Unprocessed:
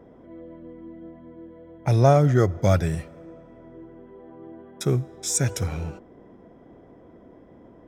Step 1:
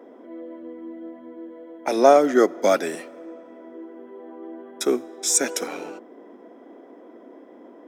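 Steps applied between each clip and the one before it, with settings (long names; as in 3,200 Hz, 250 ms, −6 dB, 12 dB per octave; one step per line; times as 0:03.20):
Butterworth high-pass 240 Hz 48 dB per octave
level +5 dB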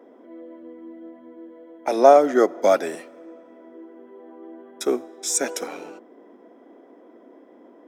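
dynamic equaliser 720 Hz, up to +6 dB, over −32 dBFS, Q 0.87
level −3.5 dB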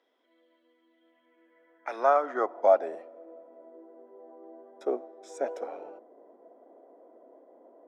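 band-pass filter sweep 3,800 Hz → 630 Hz, 0:00.89–0:02.91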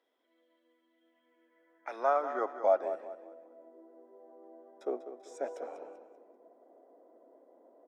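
repeating echo 194 ms, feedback 35%, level −11 dB
level −5.5 dB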